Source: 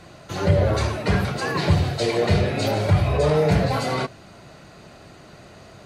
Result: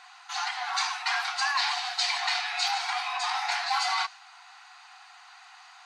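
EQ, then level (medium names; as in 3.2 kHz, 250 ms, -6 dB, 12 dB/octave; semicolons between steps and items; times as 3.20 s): low-pass 7 kHz 12 dB/octave; dynamic bell 5.4 kHz, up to +6 dB, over -45 dBFS, Q 0.96; brick-wall FIR high-pass 710 Hz; 0.0 dB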